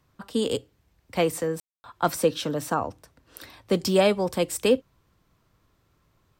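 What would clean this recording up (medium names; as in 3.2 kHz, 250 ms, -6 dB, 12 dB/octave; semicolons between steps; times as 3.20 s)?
clip repair -10 dBFS; room tone fill 1.60–1.84 s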